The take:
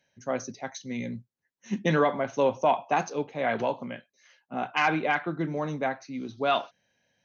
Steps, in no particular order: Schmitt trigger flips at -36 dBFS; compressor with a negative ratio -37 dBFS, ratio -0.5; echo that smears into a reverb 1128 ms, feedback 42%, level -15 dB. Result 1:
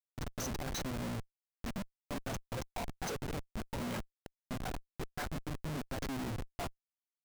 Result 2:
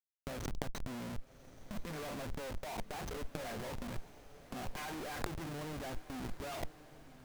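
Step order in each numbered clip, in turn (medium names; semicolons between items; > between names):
compressor with a negative ratio > echo that smears into a reverb > Schmitt trigger; Schmitt trigger > compressor with a negative ratio > echo that smears into a reverb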